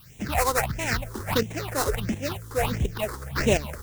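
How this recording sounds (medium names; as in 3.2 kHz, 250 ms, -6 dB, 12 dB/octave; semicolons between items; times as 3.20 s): aliases and images of a low sample rate 3.3 kHz, jitter 20%; tremolo saw up 1.4 Hz, depth 65%; a quantiser's noise floor 10-bit, dither triangular; phasing stages 6, 1.5 Hz, lowest notch 170–1300 Hz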